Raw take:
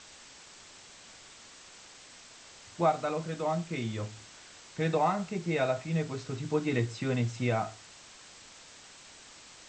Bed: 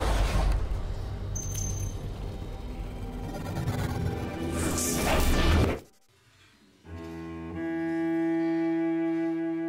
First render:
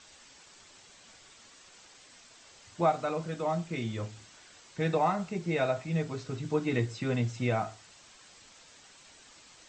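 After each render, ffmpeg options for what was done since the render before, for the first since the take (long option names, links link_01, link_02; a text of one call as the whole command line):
ffmpeg -i in.wav -af "afftdn=noise_reduction=6:noise_floor=-53" out.wav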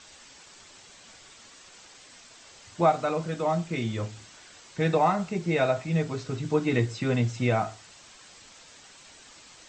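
ffmpeg -i in.wav -af "volume=4.5dB" out.wav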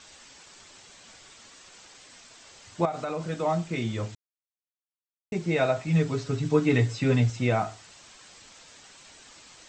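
ffmpeg -i in.wav -filter_complex "[0:a]asettb=1/sr,asplit=3[link_01][link_02][link_03];[link_01]atrim=end=2.854[link_04];[link_02]atrim=start=2.85:end=3.3,asetpts=PTS-STARTPTS,afade=type=in:duration=0.004:curve=qsin,afade=type=out:start_time=0.446:duration=0.004:curve=qsin,acompressor=threshold=-27dB:ratio=5:attack=3.2:release=140:knee=1:detection=peak[link_05];[link_03]atrim=start=3.296[link_06];[link_04][link_05]acrossfade=duration=0.004:curve1=hsin:curve2=qsin[link_07];[link_07][link_06]acrossfade=duration=0.004:curve1=qsin:curve2=hsin,asettb=1/sr,asplit=3[link_08][link_09][link_10];[link_08]atrim=end=5.864[link_11];[link_09]atrim=start=5.86:end=7.3,asetpts=PTS-STARTPTS,afade=type=in:duration=0.004:curve=qsin,afade=type=out:start_time=1.436:duration=0.004:curve=qsin,aecho=1:1:7.1:0.68,atrim=end_sample=63504[link_12];[link_10]atrim=start=7.296[link_13];[link_11][link_12]acrossfade=duration=0.004:curve1=hsin:curve2=qsin[link_14];[link_14][link_13]acrossfade=duration=0.004:curve1=qsin:curve2=hsin,asplit=3[link_15][link_16][link_17];[link_15]atrim=end=4.15,asetpts=PTS-STARTPTS,afade=type=out:start_time=4.146:duration=0.004:curve=hsin[link_18];[link_16]atrim=start=4.15:end=5.32,asetpts=PTS-STARTPTS,volume=0[link_19];[link_17]atrim=start=5.32,asetpts=PTS-STARTPTS,afade=type=in:duration=0.004:curve=hsin[link_20];[link_18][link_19][link_20]concat=n=3:v=0:a=1" out.wav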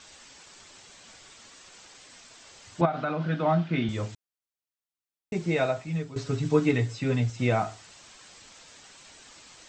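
ffmpeg -i in.wav -filter_complex "[0:a]asettb=1/sr,asplit=3[link_01][link_02][link_03];[link_01]atrim=end=2.814[link_04];[link_02]atrim=start=2.81:end=3.89,asetpts=PTS-STARTPTS,afade=type=in:duration=0.004:curve=qsin,afade=type=out:start_time=1.076:duration=0.004:curve=qsin,highpass=120,equalizer=frequency=150:width_type=q:width=4:gain=9,equalizer=frequency=270:width_type=q:width=4:gain=7,equalizer=frequency=460:width_type=q:width=4:gain=-4,equalizer=frequency=690:width_type=q:width=4:gain=3,equalizer=frequency=1500:width_type=q:width=4:gain=9,equalizer=frequency=3200:width_type=q:width=4:gain=3,lowpass=frequency=4200:width=0.5412,lowpass=frequency=4200:width=1.3066[link_05];[link_03]atrim=start=3.886[link_06];[link_04][link_05]acrossfade=duration=0.004:curve1=hsin:curve2=qsin[link_07];[link_07][link_06]acrossfade=duration=0.004:curve1=qsin:curve2=hsin,asplit=4[link_08][link_09][link_10][link_11];[link_08]atrim=end=6.16,asetpts=PTS-STARTPTS,afade=type=out:start_time=5.5:duration=0.66:silence=0.177828[link_12];[link_09]atrim=start=6.16:end=6.712,asetpts=PTS-STARTPTS,afade=type=in:duration=0.004:curve=hsin:silence=0.177828[link_13];[link_10]atrim=start=6.708:end=7.392,asetpts=PTS-STARTPTS,volume=-3.5dB[link_14];[link_11]atrim=start=7.388[link_15];[link_12][link_13]concat=n=2:v=0:a=1[link_16];[link_16][link_14]acrossfade=duration=0.004:curve1=hsin:curve2=hsin[link_17];[link_17][link_15]acrossfade=duration=0.004:curve1=hsin:curve2=hsin" out.wav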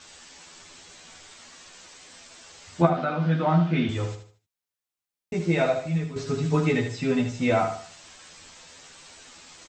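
ffmpeg -i in.wav -filter_complex "[0:a]asplit=2[link_01][link_02];[link_02]adelay=12,volume=-2dB[link_03];[link_01][link_03]amix=inputs=2:normalize=0,aecho=1:1:76|152|228|304:0.376|0.128|0.0434|0.0148" out.wav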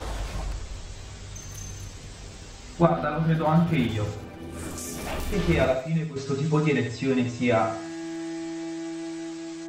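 ffmpeg -i in.wav -i bed.wav -filter_complex "[1:a]volume=-6.5dB[link_01];[0:a][link_01]amix=inputs=2:normalize=0" out.wav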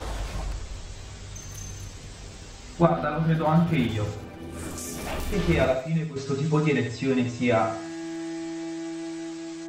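ffmpeg -i in.wav -af anull out.wav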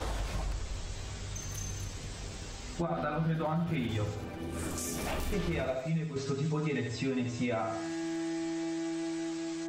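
ffmpeg -i in.wav -af "alimiter=limit=-17.5dB:level=0:latency=1:release=147,acompressor=threshold=-33dB:ratio=2" out.wav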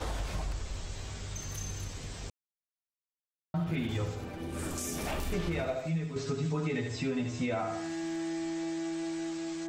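ffmpeg -i in.wav -filter_complex "[0:a]asplit=3[link_01][link_02][link_03];[link_01]atrim=end=2.3,asetpts=PTS-STARTPTS,afade=type=out:start_time=2.296:duration=0.004:curve=hsin[link_04];[link_02]atrim=start=2.3:end=3.54,asetpts=PTS-STARTPTS,volume=0[link_05];[link_03]atrim=start=3.54,asetpts=PTS-STARTPTS,afade=type=in:duration=0.004:curve=hsin[link_06];[link_04][link_05][link_06]concat=n=3:v=0:a=1" out.wav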